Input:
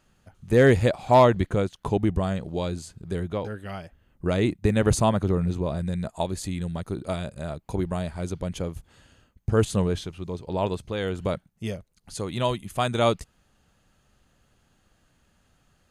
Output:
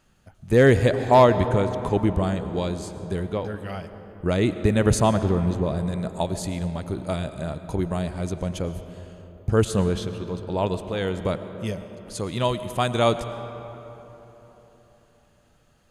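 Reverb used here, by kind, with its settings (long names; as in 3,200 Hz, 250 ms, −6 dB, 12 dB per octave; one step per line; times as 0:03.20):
comb and all-pass reverb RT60 4 s, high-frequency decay 0.45×, pre-delay 70 ms, DRR 10.5 dB
level +1.5 dB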